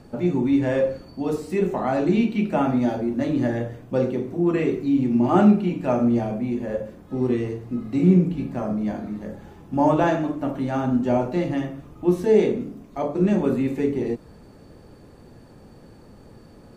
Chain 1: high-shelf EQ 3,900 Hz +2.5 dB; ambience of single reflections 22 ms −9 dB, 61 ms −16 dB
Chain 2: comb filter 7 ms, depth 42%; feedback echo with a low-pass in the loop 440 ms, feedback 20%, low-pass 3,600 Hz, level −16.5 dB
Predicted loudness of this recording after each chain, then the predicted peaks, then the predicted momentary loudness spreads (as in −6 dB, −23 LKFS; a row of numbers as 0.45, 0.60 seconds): −22.0, −22.0 LKFS; −5.0, −5.0 dBFS; 11, 12 LU